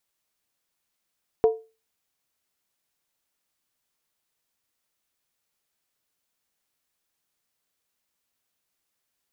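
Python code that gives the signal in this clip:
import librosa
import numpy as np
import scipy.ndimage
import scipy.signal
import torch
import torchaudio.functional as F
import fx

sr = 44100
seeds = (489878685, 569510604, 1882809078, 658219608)

y = fx.strike_skin(sr, length_s=0.63, level_db=-11.5, hz=445.0, decay_s=0.3, tilt_db=11.0, modes=5)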